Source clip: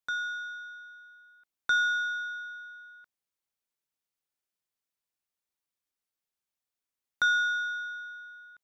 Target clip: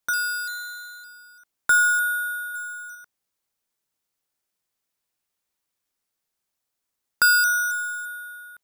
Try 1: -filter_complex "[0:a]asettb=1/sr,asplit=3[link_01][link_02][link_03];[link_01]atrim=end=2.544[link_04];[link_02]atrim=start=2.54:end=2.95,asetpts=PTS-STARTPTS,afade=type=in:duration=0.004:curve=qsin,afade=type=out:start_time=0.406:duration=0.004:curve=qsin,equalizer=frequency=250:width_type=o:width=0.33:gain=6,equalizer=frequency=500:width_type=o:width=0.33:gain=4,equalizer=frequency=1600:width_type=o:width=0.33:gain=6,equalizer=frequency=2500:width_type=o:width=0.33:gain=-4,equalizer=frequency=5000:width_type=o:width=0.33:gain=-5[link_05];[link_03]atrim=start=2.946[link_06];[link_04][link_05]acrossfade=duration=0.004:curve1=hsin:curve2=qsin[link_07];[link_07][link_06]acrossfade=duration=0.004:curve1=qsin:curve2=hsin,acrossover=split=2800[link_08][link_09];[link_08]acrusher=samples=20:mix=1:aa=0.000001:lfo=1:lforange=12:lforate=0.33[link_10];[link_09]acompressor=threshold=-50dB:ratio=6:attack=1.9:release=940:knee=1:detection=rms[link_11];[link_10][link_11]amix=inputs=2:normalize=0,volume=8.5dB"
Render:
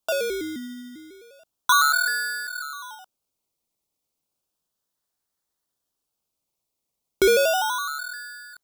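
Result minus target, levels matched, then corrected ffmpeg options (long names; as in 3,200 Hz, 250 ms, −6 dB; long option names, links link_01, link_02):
sample-and-hold swept by an LFO: distortion +24 dB
-filter_complex "[0:a]asettb=1/sr,asplit=3[link_01][link_02][link_03];[link_01]atrim=end=2.544[link_04];[link_02]atrim=start=2.54:end=2.95,asetpts=PTS-STARTPTS,afade=type=in:duration=0.004:curve=qsin,afade=type=out:start_time=0.406:duration=0.004:curve=qsin,equalizer=frequency=250:width_type=o:width=0.33:gain=6,equalizer=frequency=500:width_type=o:width=0.33:gain=4,equalizer=frequency=1600:width_type=o:width=0.33:gain=6,equalizer=frequency=2500:width_type=o:width=0.33:gain=-4,equalizer=frequency=5000:width_type=o:width=0.33:gain=-5[link_05];[link_03]atrim=start=2.946[link_06];[link_04][link_05]acrossfade=duration=0.004:curve1=hsin:curve2=qsin[link_07];[link_07][link_06]acrossfade=duration=0.004:curve1=qsin:curve2=hsin,acrossover=split=2800[link_08][link_09];[link_08]acrusher=samples=6:mix=1:aa=0.000001:lfo=1:lforange=3.6:lforate=0.33[link_10];[link_09]acompressor=threshold=-50dB:ratio=6:attack=1.9:release=940:knee=1:detection=rms[link_11];[link_10][link_11]amix=inputs=2:normalize=0,volume=8.5dB"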